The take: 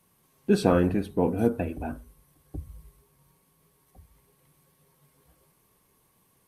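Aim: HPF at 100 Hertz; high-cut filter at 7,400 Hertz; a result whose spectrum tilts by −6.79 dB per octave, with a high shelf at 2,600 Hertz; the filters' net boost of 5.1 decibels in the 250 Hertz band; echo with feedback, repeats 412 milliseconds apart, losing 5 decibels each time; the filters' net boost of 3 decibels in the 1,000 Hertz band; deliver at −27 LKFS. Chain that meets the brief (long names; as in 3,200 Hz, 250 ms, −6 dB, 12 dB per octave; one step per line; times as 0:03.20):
high-pass filter 100 Hz
low-pass filter 7,400 Hz
parametric band 250 Hz +6.5 dB
parametric band 1,000 Hz +5 dB
high-shelf EQ 2,600 Hz −8.5 dB
repeating echo 412 ms, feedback 56%, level −5 dB
level −4.5 dB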